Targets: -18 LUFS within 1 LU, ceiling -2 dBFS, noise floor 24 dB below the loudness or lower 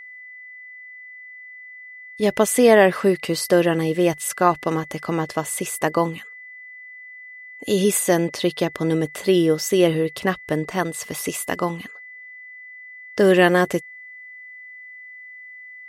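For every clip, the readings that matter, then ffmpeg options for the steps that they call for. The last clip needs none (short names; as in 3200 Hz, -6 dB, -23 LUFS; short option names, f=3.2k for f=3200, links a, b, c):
steady tone 2000 Hz; tone level -38 dBFS; loudness -20.5 LUFS; peak -1.5 dBFS; loudness target -18.0 LUFS
-> -af "bandreject=f=2k:w=30"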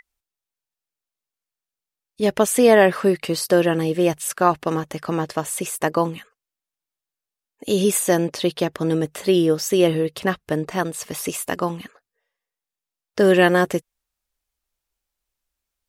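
steady tone none; loudness -20.5 LUFS; peak -2.0 dBFS; loudness target -18.0 LUFS
-> -af "volume=2.5dB,alimiter=limit=-2dB:level=0:latency=1"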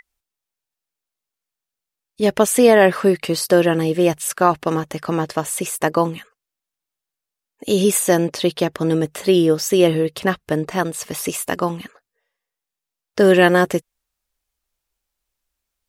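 loudness -18.0 LUFS; peak -2.0 dBFS; noise floor -86 dBFS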